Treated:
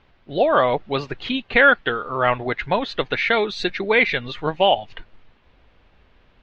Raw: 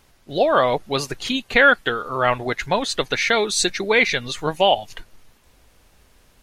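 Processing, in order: low-pass 3.5 kHz 24 dB/octave

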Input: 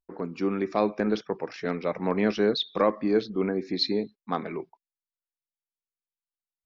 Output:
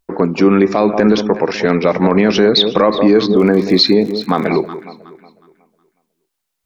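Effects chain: 3.36–4.46 s: crackle 48 per s -40 dBFS; echo whose repeats swap between lows and highs 183 ms, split 1 kHz, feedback 54%, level -12.5 dB; loudness maximiser +19.5 dB; trim -1 dB

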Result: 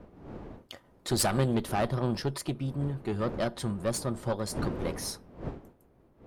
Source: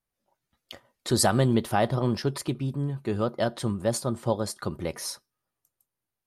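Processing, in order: single-diode clipper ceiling -24 dBFS; wind noise 400 Hz -41 dBFS; trim -1.5 dB

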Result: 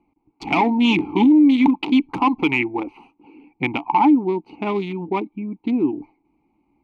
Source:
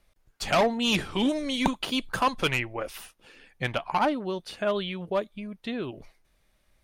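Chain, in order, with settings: local Wiener filter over 25 samples; vowel filter u; loudness maximiser +31 dB; trim -7 dB

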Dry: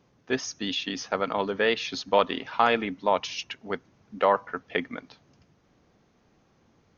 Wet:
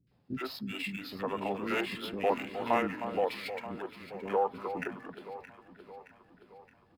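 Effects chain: median filter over 5 samples; three bands offset in time lows, highs, mids 70/110 ms, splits 380/1800 Hz; formant shift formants -4 st; on a send: echo whose repeats swap between lows and highs 310 ms, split 1.4 kHz, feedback 73%, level -10 dB; on the sum: trim -5 dB

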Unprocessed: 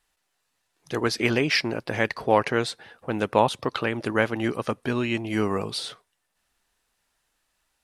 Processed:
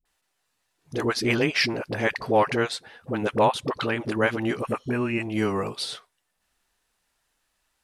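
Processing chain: phase dispersion highs, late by 54 ms, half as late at 440 Hz; spectral replace 4.63–5.21 s, 2.9–7 kHz after

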